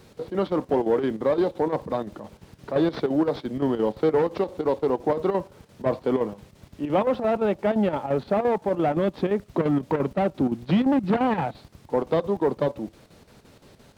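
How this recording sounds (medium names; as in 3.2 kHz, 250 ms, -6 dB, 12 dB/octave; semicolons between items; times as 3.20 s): chopped level 5.8 Hz, depth 60%, duty 75%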